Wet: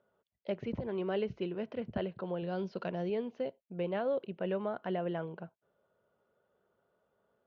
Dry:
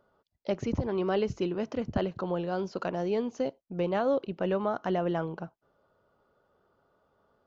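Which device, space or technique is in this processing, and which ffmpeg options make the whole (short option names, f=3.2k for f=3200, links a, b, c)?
guitar cabinet: -filter_complex "[0:a]highpass=78,equalizer=f=86:t=q:w=4:g=-9,equalizer=f=140:t=q:w=4:g=-4,equalizer=f=290:t=q:w=4:g=-8,equalizer=f=830:t=q:w=4:g=-5,equalizer=f=1.2k:t=q:w=4:g=-7,lowpass=f=3.5k:w=0.5412,lowpass=f=3.5k:w=1.3066,asettb=1/sr,asplit=3[a][b][c];[a]atrim=end=2.424[d];[b]atrim=start=2.42:end=3.1,asetpts=PTS-STARTPTS,afade=t=in:d=0.004:c=qsin,afade=t=out:st=0.676:d=0.004:c=qsin,bass=f=250:g=5,treble=f=4k:g=10[e];[c]atrim=start=3.096[f];[d][e]acrossfade=d=0.004:c1=hsin:c2=qsin[g];[g][f]acrossfade=d=0.004:c1=qsin:c2=hsin,volume=-4dB"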